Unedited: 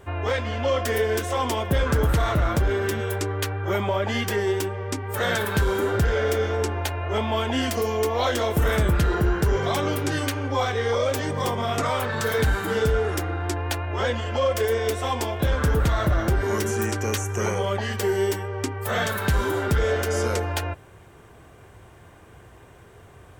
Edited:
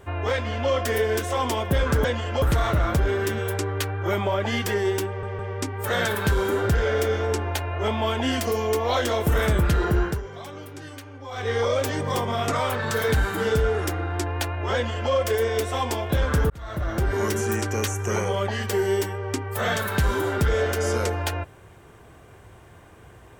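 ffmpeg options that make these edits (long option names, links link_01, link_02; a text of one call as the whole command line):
ffmpeg -i in.wav -filter_complex "[0:a]asplit=8[link_01][link_02][link_03][link_04][link_05][link_06][link_07][link_08];[link_01]atrim=end=2.042[link_09];[link_02]atrim=start=14.038:end=14.422[link_10];[link_03]atrim=start=2.038:end=4.852[link_11];[link_04]atrim=start=4.688:end=4.852[link_12];[link_05]atrim=start=4.688:end=9.52,asetpts=PTS-STARTPTS,afade=type=out:start_time=4.642:duration=0.19:silence=0.199526[link_13];[link_06]atrim=start=9.52:end=10.61,asetpts=PTS-STARTPTS,volume=-14dB[link_14];[link_07]atrim=start=10.61:end=15.8,asetpts=PTS-STARTPTS,afade=type=in:duration=0.19:silence=0.199526,afade=type=out:start_time=5.186:duration=0.004:curve=hsin[link_15];[link_08]atrim=start=15.8,asetpts=PTS-STARTPTS,afade=type=in:duration=0.65[link_16];[link_09][link_10]acrossfade=duration=0.004:curve1=hsin:curve2=hsin[link_17];[link_17][link_11]acrossfade=duration=0.004:curve1=hsin:curve2=hsin[link_18];[link_18][link_12]acrossfade=duration=0.004:curve1=hsin:curve2=hsin[link_19];[link_13][link_14][link_15][link_16]concat=n=4:v=0:a=1[link_20];[link_19][link_20]acrossfade=duration=0.004:curve1=hsin:curve2=hsin" out.wav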